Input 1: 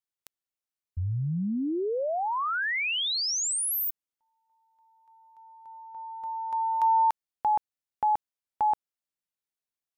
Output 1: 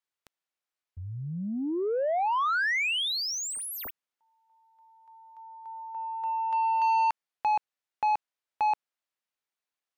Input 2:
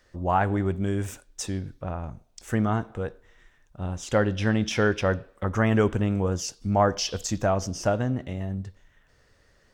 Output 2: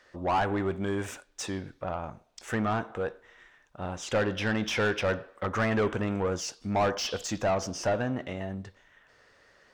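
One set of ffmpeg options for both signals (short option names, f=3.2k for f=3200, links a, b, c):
-filter_complex "[0:a]asplit=2[a][b];[b]highpass=f=720:p=1,volume=22dB,asoftclip=type=tanh:threshold=-8.5dB[c];[a][c]amix=inputs=2:normalize=0,lowpass=f=2.6k:p=1,volume=-6dB,volume=-9dB"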